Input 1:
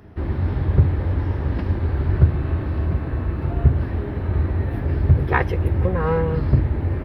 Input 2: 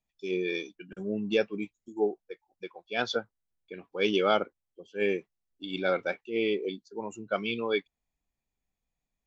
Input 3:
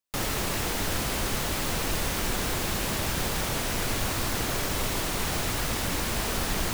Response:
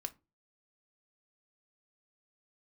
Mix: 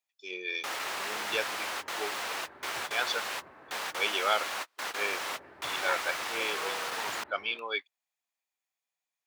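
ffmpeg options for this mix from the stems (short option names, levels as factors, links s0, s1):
-filter_complex "[0:a]highshelf=f=2200:g=-10,aeval=exprs='val(0)+0.0355*(sin(2*PI*50*n/s)+sin(2*PI*2*50*n/s)/2+sin(2*PI*3*50*n/s)/3+sin(2*PI*4*50*n/s)/4+sin(2*PI*5*50*n/s)/5)':c=same,adelay=550,volume=0.355,asplit=3[s0][s1][s2];[s0]atrim=end=4.05,asetpts=PTS-STARTPTS,afade=t=out:st=4.046:d=0.004:c=hsin[s3];[s1]atrim=start=4.05:end=5,asetpts=PTS-STARTPTS,volume=0[s4];[s2]atrim=start=5,asetpts=PTS-STARTPTS,afade=t=in:d=0.004:c=hsin[s5];[s3][s4][s5]concat=n=3:v=0:a=1[s6];[1:a]volume=1.19,asplit=2[s7][s8];[2:a]lowpass=f=2300:p=1,adelay=500,volume=1.19[s9];[s8]apad=whole_len=319063[s10];[s9][s10]sidechaingate=range=0.01:threshold=0.00251:ratio=16:detection=peak[s11];[s6][s7][s11]amix=inputs=3:normalize=0,highpass=900"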